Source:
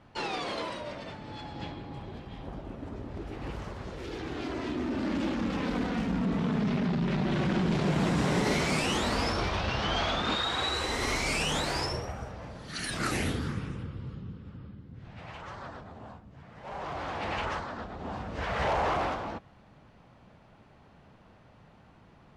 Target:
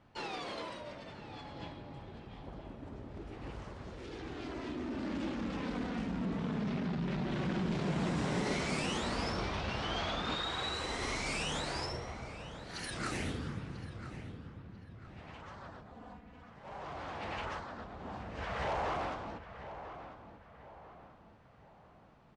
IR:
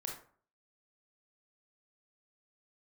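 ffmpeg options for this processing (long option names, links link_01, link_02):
-filter_complex "[0:a]asplit=2[link_01][link_02];[link_02]adelay=993,lowpass=frequency=2500:poles=1,volume=-11dB,asplit=2[link_03][link_04];[link_04]adelay=993,lowpass=frequency=2500:poles=1,volume=0.43,asplit=2[link_05][link_06];[link_06]adelay=993,lowpass=frequency=2500:poles=1,volume=0.43,asplit=2[link_07][link_08];[link_08]adelay=993,lowpass=frequency=2500:poles=1,volume=0.43[link_09];[link_03][link_05][link_07][link_09]amix=inputs=4:normalize=0[link_10];[link_01][link_10]amix=inputs=2:normalize=0,aresample=22050,aresample=44100,asettb=1/sr,asplit=3[link_11][link_12][link_13];[link_11]atrim=end=15.924[link_14];[link_12]atrim=start=15.92:end=16.5,asetpts=PTS-STARTPTS,afade=type=in:duration=0.004:curve=qsin,afade=type=out:start_time=0.576:duration=0.004:curve=qsin,aecho=1:1:4.1:0.81,atrim=end_sample=25578[link_15];[link_13]atrim=start=16.496[link_16];[link_14][link_15]acrossfade=duration=0.004:curve1=hsin:curve2=qsin[link_17];[link_17][link_16]acrossfade=duration=0.004:curve1=qsin:curve2=hsin,volume=-7dB"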